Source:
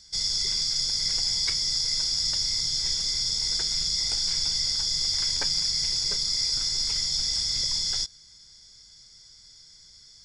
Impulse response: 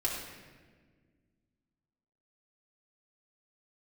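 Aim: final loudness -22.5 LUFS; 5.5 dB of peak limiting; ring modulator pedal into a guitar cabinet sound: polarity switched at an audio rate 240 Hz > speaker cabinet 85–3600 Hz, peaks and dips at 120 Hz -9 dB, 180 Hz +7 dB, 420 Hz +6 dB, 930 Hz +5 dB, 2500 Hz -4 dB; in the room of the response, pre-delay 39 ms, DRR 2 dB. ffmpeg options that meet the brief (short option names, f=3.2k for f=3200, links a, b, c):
-filter_complex "[0:a]alimiter=limit=-18.5dB:level=0:latency=1,asplit=2[a][b];[1:a]atrim=start_sample=2205,adelay=39[c];[b][c]afir=irnorm=-1:irlink=0,volume=-7.5dB[d];[a][d]amix=inputs=2:normalize=0,aeval=exprs='val(0)*sgn(sin(2*PI*240*n/s))':c=same,highpass=85,equalizer=f=120:t=q:w=4:g=-9,equalizer=f=180:t=q:w=4:g=7,equalizer=f=420:t=q:w=4:g=6,equalizer=f=930:t=q:w=4:g=5,equalizer=f=2.5k:t=q:w=4:g=-4,lowpass=f=3.6k:w=0.5412,lowpass=f=3.6k:w=1.3066,volume=9.5dB"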